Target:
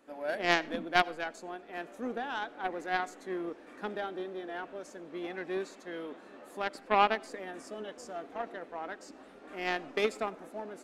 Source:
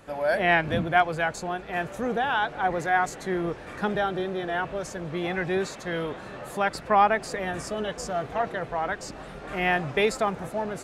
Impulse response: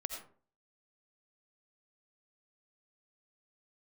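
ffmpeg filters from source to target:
-filter_complex "[0:a]lowshelf=f=180:t=q:w=3:g=-13.5,aeval=exprs='0.473*(cos(1*acos(clip(val(0)/0.473,-1,1)))-cos(1*PI/2))+0.119*(cos(3*acos(clip(val(0)/0.473,-1,1)))-cos(3*PI/2))':c=same,asplit=2[a][b];[1:a]atrim=start_sample=2205[c];[b][c]afir=irnorm=-1:irlink=0,volume=-16dB[d];[a][d]amix=inputs=2:normalize=0,volume=-2.5dB"

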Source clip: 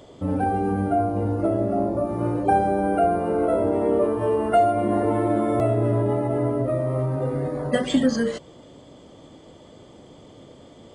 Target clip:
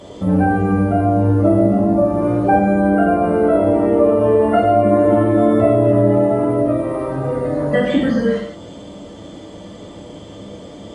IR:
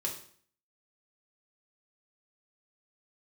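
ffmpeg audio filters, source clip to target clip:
-filter_complex "[0:a]acrossover=split=3100[a][b];[b]acompressor=threshold=-56dB:ratio=4:attack=1:release=60[c];[a][c]amix=inputs=2:normalize=0[d];[1:a]atrim=start_sample=2205,atrim=end_sample=4410,asetrate=23373,aresample=44100[e];[d][e]afir=irnorm=-1:irlink=0,asplit=2[f][g];[g]acompressor=threshold=-26dB:ratio=6,volume=1dB[h];[f][h]amix=inputs=2:normalize=0,volume=-2.5dB"

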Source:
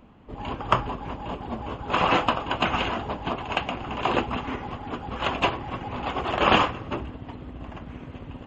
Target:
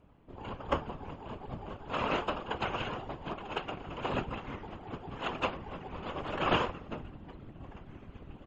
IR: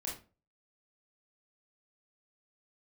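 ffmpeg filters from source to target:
-filter_complex "[0:a]afftfilt=real='hypot(re,im)*cos(2*PI*random(0))':imag='hypot(re,im)*sin(2*PI*random(1))':win_size=512:overlap=0.75,asplit=2[a][b];[b]asetrate=22050,aresample=44100,atempo=2,volume=-3dB[c];[a][c]amix=inputs=2:normalize=0,volume=-5dB"

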